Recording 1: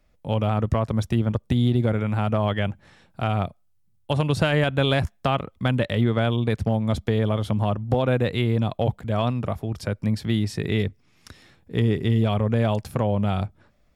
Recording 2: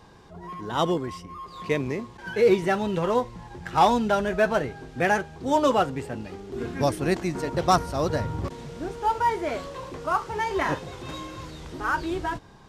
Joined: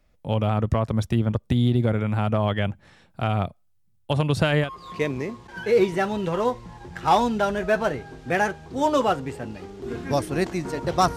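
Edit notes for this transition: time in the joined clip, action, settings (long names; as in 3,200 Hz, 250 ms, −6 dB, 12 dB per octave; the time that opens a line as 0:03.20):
recording 1
0:04.65: continue with recording 2 from 0:01.35, crossfade 0.12 s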